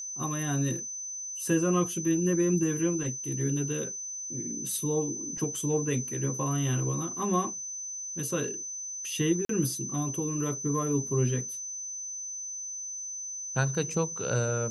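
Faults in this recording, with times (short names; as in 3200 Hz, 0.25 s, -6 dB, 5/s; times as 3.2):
tone 6100 Hz -35 dBFS
9.45–9.49 gap 43 ms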